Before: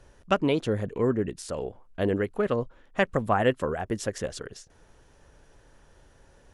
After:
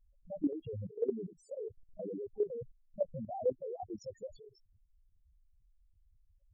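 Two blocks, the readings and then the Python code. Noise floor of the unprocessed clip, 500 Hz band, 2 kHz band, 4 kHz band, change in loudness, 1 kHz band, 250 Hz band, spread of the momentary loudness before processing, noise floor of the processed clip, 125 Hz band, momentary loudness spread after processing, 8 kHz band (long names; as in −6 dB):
−58 dBFS, −10.0 dB, below −40 dB, below −25 dB, −11.5 dB, −17.5 dB, −12.0 dB, 11 LU, −69 dBFS, −16.0 dB, 13 LU, below −20 dB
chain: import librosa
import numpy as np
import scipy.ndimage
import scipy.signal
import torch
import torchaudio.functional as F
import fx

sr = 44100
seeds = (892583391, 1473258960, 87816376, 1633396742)

y = fx.spec_topn(x, sr, count=2)
y = fx.level_steps(y, sr, step_db=13)
y = y * librosa.db_to_amplitude(-1.0)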